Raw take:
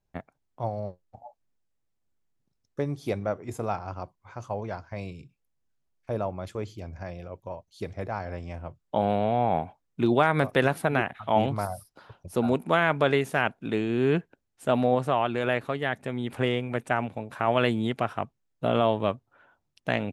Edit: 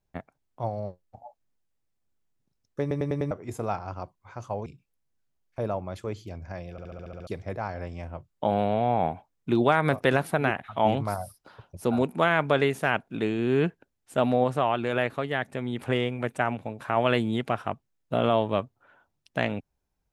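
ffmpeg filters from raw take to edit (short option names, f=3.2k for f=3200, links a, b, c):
-filter_complex "[0:a]asplit=15[a][b][c][d][e][f][g][h][i][j][k][l][m][n][o];[a]atrim=end=2.912[p];[b]atrim=start=2.808:end=2.912[q];[c]atrim=start=2.808:end=2.912[r];[d]atrim=start=2.808:end=2.912[s];[e]atrim=start=2.808:end=2.912[t];[f]atrim=start=3.308:end=4.662[u];[g]atrim=start=5.168:end=7.292[v];[h]atrim=start=7.218:end=7.292[w];[i]atrim=start=7.218:end=7.292[x];[j]atrim=start=7.218:end=7.292[y];[k]atrim=start=7.218:end=7.292[z];[l]atrim=start=7.218:end=7.292[aa];[m]atrim=start=7.218:end=7.292[ab];[n]atrim=start=7.218:end=7.292[ac];[o]atrim=start=7.778[ad];[p][q]acrossfade=d=0.004:c1=hsin:c2=hsin[ae];[ae][r]acrossfade=d=0.004:c1=hsin:c2=hsin[af];[af][s]acrossfade=d=0.004:c1=hsin:c2=hsin[ag];[ag][t]acrossfade=d=0.004:c1=hsin:c2=hsin[ah];[ah][u]acrossfade=d=0.004:c1=hsin:c2=hsin[ai];[ai][v]acrossfade=d=0.004:c1=hsin:c2=hsin[aj];[aj][w]acrossfade=d=0.004:c1=hsin:c2=hsin[ak];[ak][x]acrossfade=d=0.004:c1=hsin:c2=hsin[al];[al][y]acrossfade=d=0.004:c1=hsin:c2=hsin[am];[am][z]acrossfade=d=0.004:c1=hsin:c2=hsin[an];[an][aa]acrossfade=d=0.004:c1=hsin:c2=hsin[ao];[ao][ab]acrossfade=d=0.004:c1=hsin:c2=hsin[ap];[ap][ac]acrossfade=d=0.004:c1=hsin:c2=hsin[aq];[aq][ad]acrossfade=d=0.004:c1=hsin:c2=hsin"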